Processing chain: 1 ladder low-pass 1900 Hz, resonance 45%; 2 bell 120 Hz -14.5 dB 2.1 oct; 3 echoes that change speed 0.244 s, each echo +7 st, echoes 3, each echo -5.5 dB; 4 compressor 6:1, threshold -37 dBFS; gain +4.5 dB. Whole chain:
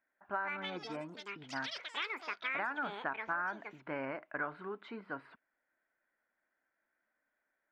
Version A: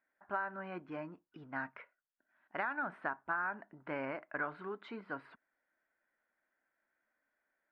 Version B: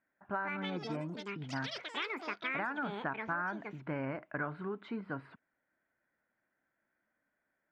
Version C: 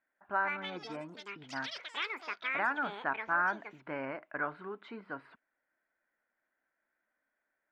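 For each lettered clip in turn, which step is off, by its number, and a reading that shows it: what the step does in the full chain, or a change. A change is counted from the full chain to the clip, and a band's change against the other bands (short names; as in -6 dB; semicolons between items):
3, 4 kHz band -17.0 dB; 2, 125 Hz band +11.0 dB; 4, momentary loudness spread change +4 LU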